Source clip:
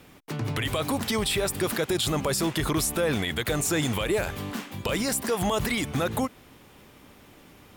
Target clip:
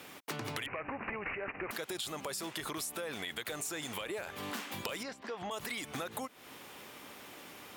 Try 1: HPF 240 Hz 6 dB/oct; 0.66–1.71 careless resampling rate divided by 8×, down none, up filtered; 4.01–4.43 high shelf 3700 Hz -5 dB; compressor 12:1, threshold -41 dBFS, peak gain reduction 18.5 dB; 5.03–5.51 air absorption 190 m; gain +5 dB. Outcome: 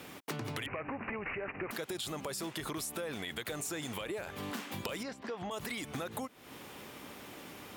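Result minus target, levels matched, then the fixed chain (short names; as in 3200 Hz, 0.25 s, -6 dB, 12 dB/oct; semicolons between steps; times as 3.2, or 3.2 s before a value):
250 Hz band +3.0 dB
HPF 590 Hz 6 dB/oct; 0.66–1.71 careless resampling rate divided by 8×, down none, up filtered; 4.01–4.43 high shelf 3700 Hz -5 dB; compressor 12:1, threshold -41 dBFS, peak gain reduction 17.5 dB; 5.03–5.51 air absorption 190 m; gain +5 dB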